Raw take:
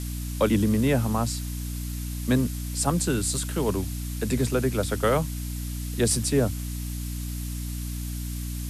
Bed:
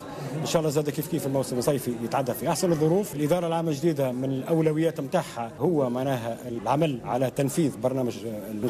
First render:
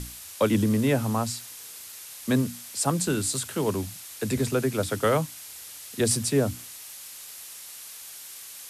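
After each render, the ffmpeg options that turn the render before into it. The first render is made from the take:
-af "bandreject=f=60:t=h:w=6,bandreject=f=120:t=h:w=6,bandreject=f=180:t=h:w=6,bandreject=f=240:t=h:w=6,bandreject=f=300:t=h:w=6"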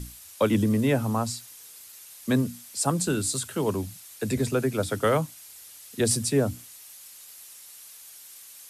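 -af "afftdn=nr=7:nf=-43"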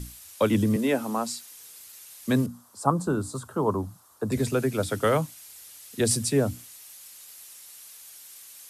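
-filter_complex "[0:a]asettb=1/sr,asplit=3[s0][s1][s2];[s0]atrim=end=0.764[s3];[s1]atrim=start=0.76:end=1.54,asetpts=PTS-STARTPTS,afade=t=in:d=0.004:c=qsin,afade=t=out:st=0.776:d=0.004:c=qsin,highpass=f=210:w=0.5412,highpass=f=210:w=1.3066[s4];[s2]atrim=start=1.536[s5];[s3][s4]acrossfade=d=0.004:c1=hsin:c2=qsin[s6];[s6][s5]acrossfade=d=0.004:c1=qsin:c2=hsin,asettb=1/sr,asplit=3[s7][s8][s9];[s7]atrim=end=2.464[s10];[s8]atrim=start=2.46:end=4.32,asetpts=PTS-STARTPTS,afade=t=in:d=0.004:c=qsin,afade=t=out:st=1.856:d=0.004:c=qsin,highshelf=f=1600:t=q:w=3:g=-12[s11];[s9]atrim=start=4.316[s12];[s10][s11]acrossfade=d=0.004:c1=hsin:c2=qsin[s13];[s13][s12]acrossfade=d=0.004:c1=qsin:c2=hsin"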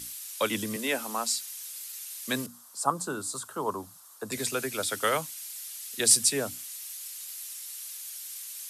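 -af "highpass=f=340:p=1,tiltshelf=f=1300:g=-6.5"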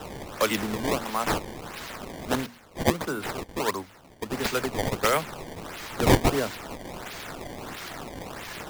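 -filter_complex "[0:a]asplit=2[s0][s1];[s1]aeval=exprs='sgn(val(0))*max(abs(val(0))-0.00562,0)':c=same,volume=0.562[s2];[s0][s2]amix=inputs=2:normalize=0,acrusher=samples=19:mix=1:aa=0.000001:lfo=1:lforange=30.4:lforate=1.5"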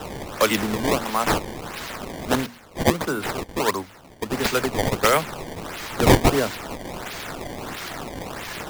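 -af "volume=1.78,alimiter=limit=0.708:level=0:latency=1"

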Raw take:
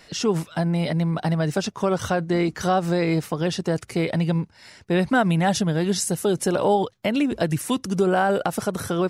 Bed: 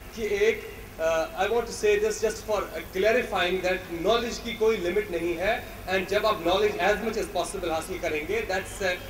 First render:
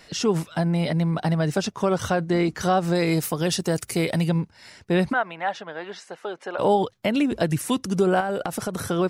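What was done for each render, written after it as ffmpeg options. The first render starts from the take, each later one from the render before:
-filter_complex "[0:a]asettb=1/sr,asplit=3[s0][s1][s2];[s0]atrim=end=2.954[s3];[s1]atrim=start=2.95:end=4.29,asetpts=PTS-STARTPTS,afade=t=in:d=0.004:c=qsin,afade=t=out:st=1.336:d=0.004:c=qsin,aemphasis=mode=production:type=50fm[s4];[s2]atrim=start=4.286[s5];[s3][s4]acrossfade=d=0.004:c1=hsin:c2=qsin[s6];[s6][s5]acrossfade=d=0.004:c1=qsin:c2=hsin,asplit=3[s7][s8][s9];[s7]afade=t=out:st=5.12:d=0.02[s10];[s8]highpass=750,lowpass=2100,afade=t=in:st=5.12:d=0.02,afade=t=out:st=6.58:d=0.02[s11];[s9]afade=t=in:st=6.58:d=0.02[s12];[s10][s11][s12]amix=inputs=3:normalize=0,asettb=1/sr,asplit=3[s13][s14][s15];[s13]atrim=end=8.204[s16];[s14]atrim=start=8.2:end=8.77,asetpts=PTS-STARTPTS,afade=t=in:d=0.004:c=qsin,afade=t=out:st=0.566:d=0.004:c=qsin,acompressor=threshold=0.0794:ratio=6:attack=3.2:release=140:knee=1:detection=peak[s17];[s15]atrim=start=8.766[s18];[s16][s17]acrossfade=d=0.004:c1=hsin:c2=qsin[s19];[s19][s18]acrossfade=d=0.004:c1=qsin:c2=hsin"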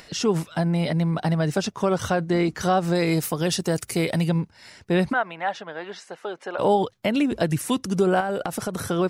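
-af "acompressor=mode=upward:threshold=0.00631:ratio=2.5"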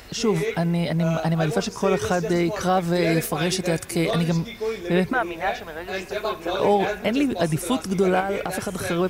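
-filter_complex "[1:a]volume=0.631[s0];[0:a][s0]amix=inputs=2:normalize=0"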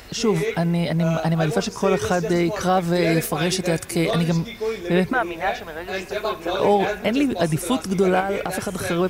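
-af "volume=1.19"

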